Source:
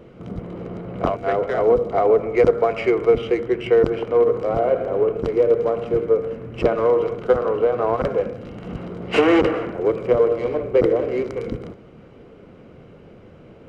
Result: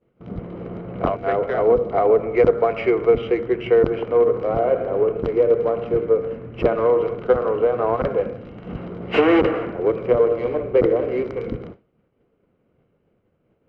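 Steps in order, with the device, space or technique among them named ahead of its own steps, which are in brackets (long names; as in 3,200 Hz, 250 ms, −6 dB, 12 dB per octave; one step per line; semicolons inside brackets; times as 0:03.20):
hearing-loss simulation (low-pass filter 3,400 Hz 12 dB per octave; downward expander −31 dBFS)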